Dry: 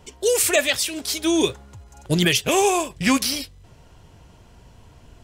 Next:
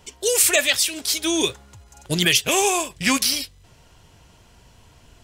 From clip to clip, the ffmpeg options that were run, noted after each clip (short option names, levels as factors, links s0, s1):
-af "tiltshelf=f=1300:g=-4"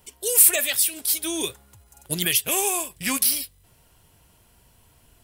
-af "aexciter=amount=7.4:drive=1.3:freq=8900,volume=0.447"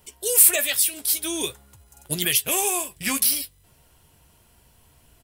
-filter_complex "[0:a]asoftclip=type=hard:threshold=0.631,asplit=2[s0][s1];[s1]adelay=14,volume=0.282[s2];[s0][s2]amix=inputs=2:normalize=0"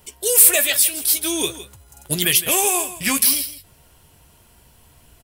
-af "acontrast=50,aecho=1:1:162:0.188,volume=0.891"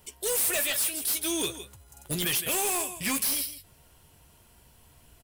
-af "asoftclip=type=hard:threshold=0.112,volume=0.531"